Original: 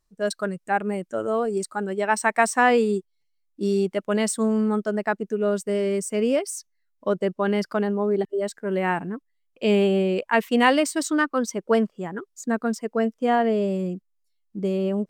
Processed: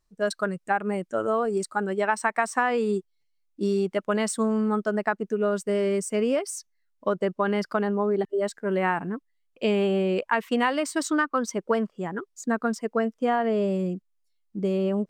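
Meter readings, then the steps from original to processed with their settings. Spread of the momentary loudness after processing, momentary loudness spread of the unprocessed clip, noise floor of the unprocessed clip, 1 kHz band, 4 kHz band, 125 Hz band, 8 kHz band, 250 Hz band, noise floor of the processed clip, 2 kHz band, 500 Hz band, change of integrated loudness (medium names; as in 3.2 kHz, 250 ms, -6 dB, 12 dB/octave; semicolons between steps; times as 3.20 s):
7 LU, 10 LU, -72 dBFS, -2.0 dB, -4.0 dB, -2.0 dB, -3.5 dB, -2.5 dB, -72 dBFS, -2.5 dB, -2.0 dB, -2.5 dB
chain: dynamic bell 1.2 kHz, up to +6 dB, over -36 dBFS, Q 1.2; compression 6:1, threshold -20 dBFS, peak gain reduction 10.5 dB; treble shelf 11 kHz -6 dB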